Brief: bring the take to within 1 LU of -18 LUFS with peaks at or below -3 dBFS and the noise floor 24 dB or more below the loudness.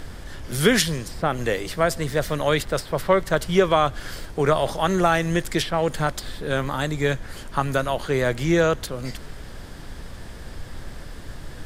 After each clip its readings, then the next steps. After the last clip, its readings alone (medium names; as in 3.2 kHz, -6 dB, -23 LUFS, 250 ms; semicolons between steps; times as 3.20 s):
noise floor -39 dBFS; noise floor target -47 dBFS; loudness -23.0 LUFS; peak level -3.5 dBFS; loudness target -18.0 LUFS
-> noise print and reduce 8 dB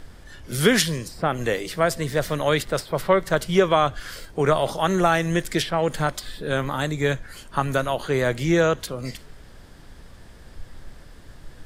noise floor -46 dBFS; noise floor target -47 dBFS
-> noise print and reduce 6 dB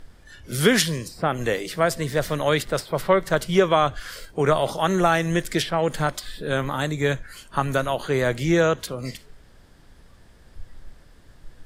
noise floor -51 dBFS; loudness -23.0 LUFS; peak level -3.5 dBFS; loudness target -18.0 LUFS
-> trim +5 dB; peak limiter -3 dBFS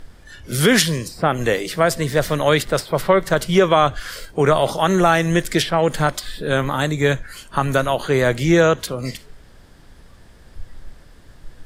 loudness -18.5 LUFS; peak level -3.0 dBFS; noise floor -46 dBFS